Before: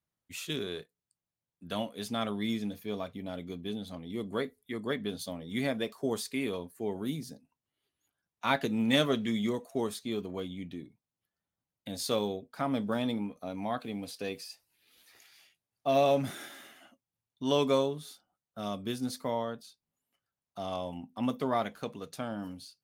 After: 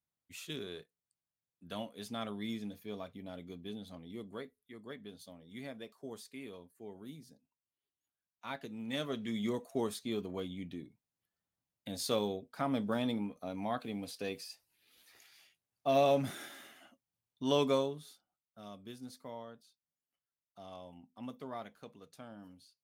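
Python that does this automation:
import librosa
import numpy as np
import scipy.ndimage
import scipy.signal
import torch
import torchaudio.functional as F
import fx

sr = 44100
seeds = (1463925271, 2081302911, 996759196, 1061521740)

y = fx.gain(x, sr, db=fx.line((4.06, -7.0), (4.57, -14.0), (8.82, -14.0), (9.57, -2.5), (17.63, -2.5), (18.63, -13.5)))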